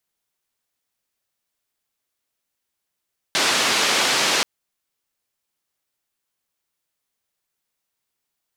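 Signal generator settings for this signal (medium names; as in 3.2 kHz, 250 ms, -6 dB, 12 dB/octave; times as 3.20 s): noise band 240–5000 Hz, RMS -19.5 dBFS 1.08 s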